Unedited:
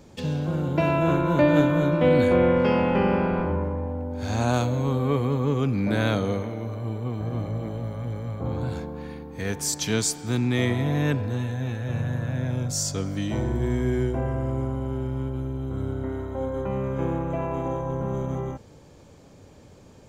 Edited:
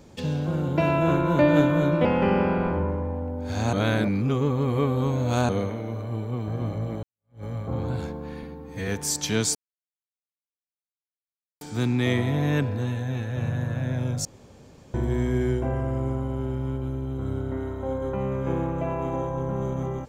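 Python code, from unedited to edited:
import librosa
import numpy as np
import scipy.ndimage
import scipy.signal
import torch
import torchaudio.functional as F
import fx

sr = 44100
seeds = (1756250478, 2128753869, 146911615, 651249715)

y = fx.edit(x, sr, fx.cut(start_s=2.05, length_s=0.73),
    fx.reverse_span(start_s=4.46, length_s=1.76),
    fx.fade_in_span(start_s=7.76, length_s=0.41, curve='exp'),
    fx.stretch_span(start_s=9.16, length_s=0.3, factor=1.5),
    fx.insert_silence(at_s=10.13, length_s=2.06),
    fx.room_tone_fill(start_s=12.77, length_s=0.69), tone=tone)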